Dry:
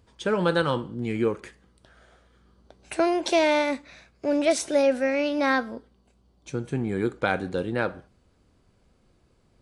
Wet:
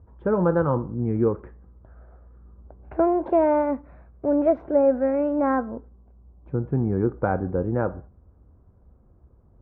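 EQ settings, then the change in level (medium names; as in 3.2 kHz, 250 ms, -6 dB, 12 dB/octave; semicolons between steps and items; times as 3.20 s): low-pass 1.2 kHz 24 dB/octave; peaking EQ 66 Hz +12.5 dB 1.4 oct; +2.0 dB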